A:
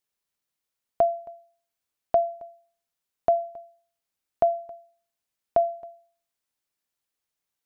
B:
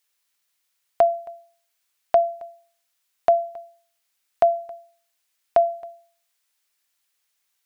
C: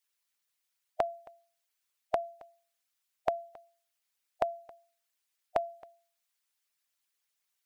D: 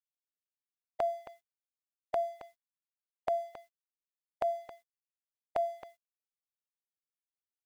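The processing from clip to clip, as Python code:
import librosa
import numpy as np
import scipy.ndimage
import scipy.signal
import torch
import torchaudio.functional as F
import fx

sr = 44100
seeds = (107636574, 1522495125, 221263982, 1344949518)

y1 = fx.curve_eq(x, sr, hz=(110.0, 150.0, 2000.0), db=(0, -4, 14))
y1 = y1 * librosa.db_to_amplitude(-2.5)
y2 = fx.hpss(y1, sr, part='harmonic', gain_db=-14)
y2 = y2 * librosa.db_to_amplitude(-4.0)
y3 = fx.transient(y2, sr, attack_db=-8, sustain_db=5)
y3 = np.sign(y3) * np.maximum(np.abs(y3) - 10.0 ** (-60.0 / 20.0), 0.0)
y3 = y3 * librosa.db_to_amplitude(3.0)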